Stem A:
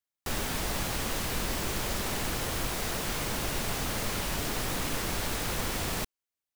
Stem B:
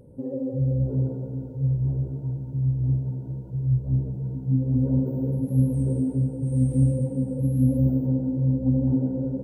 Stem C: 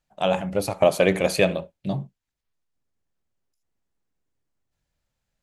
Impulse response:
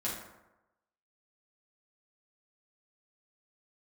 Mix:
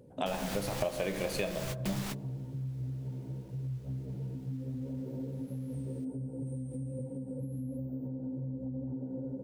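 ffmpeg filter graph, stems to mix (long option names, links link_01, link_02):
-filter_complex "[0:a]volume=27.5dB,asoftclip=hard,volume=-27.5dB,equalizer=frequency=3700:width=0.45:gain=2.5,volume=-3dB[link_01];[1:a]acompressor=threshold=-25dB:ratio=3,highpass=frequency=170:poles=1,alimiter=level_in=3.5dB:limit=-24dB:level=0:latency=1:release=183,volume=-3.5dB,volume=-3.5dB[link_02];[2:a]volume=-5dB,asplit=3[link_03][link_04][link_05];[link_04]volume=-7.5dB[link_06];[link_05]apad=whole_len=288964[link_07];[link_01][link_07]sidechaingate=range=-33dB:threshold=-46dB:ratio=16:detection=peak[link_08];[3:a]atrim=start_sample=2205[link_09];[link_06][link_09]afir=irnorm=-1:irlink=0[link_10];[link_08][link_02][link_03][link_10]amix=inputs=4:normalize=0,acompressor=threshold=-31dB:ratio=5"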